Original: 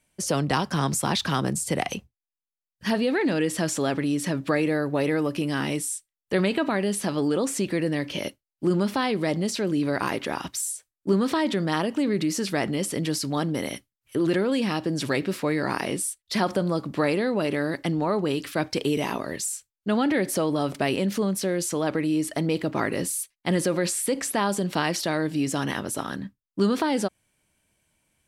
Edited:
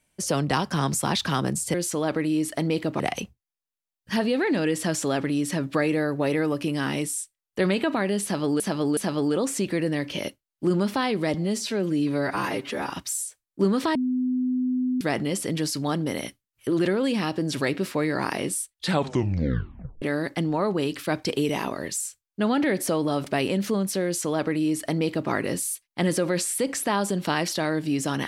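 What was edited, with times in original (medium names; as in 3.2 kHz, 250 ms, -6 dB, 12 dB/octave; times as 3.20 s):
6.97–7.34 s: loop, 3 plays
9.34–10.38 s: stretch 1.5×
11.43–12.49 s: bleep 253 Hz -21.5 dBFS
16.21 s: tape stop 1.29 s
21.53–22.79 s: copy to 1.74 s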